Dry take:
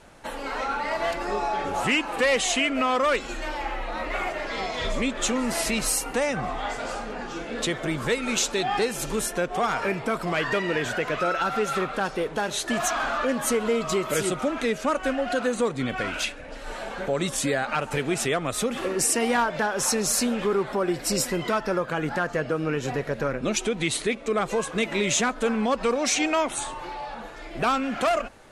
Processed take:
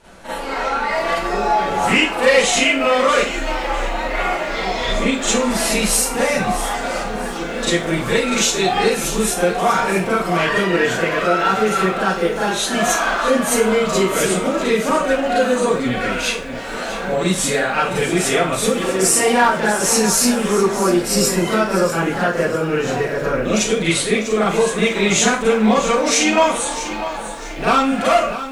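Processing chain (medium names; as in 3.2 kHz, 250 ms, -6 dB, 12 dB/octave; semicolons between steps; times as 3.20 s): 16.46–16.88 s: doubling 17 ms -2 dB; Schroeder reverb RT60 0.34 s, combs from 33 ms, DRR -8.5 dB; bit-crushed delay 647 ms, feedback 35%, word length 7-bit, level -12 dB; trim -1 dB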